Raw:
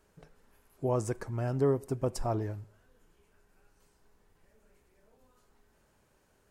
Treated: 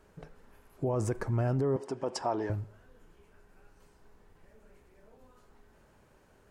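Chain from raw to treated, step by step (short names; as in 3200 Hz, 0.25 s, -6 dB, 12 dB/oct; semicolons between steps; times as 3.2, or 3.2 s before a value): high shelf 3600 Hz -8.5 dB; limiter -29.5 dBFS, peak gain reduction 11.5 dB; 1.76–2.5 speaker cabinet 290–8900 Hz, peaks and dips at 900 Hz +7 dB, 1700 Hz +4 dB, 3100 Hz +6 dB, 5100 Hz +6 dB; gain +7 dB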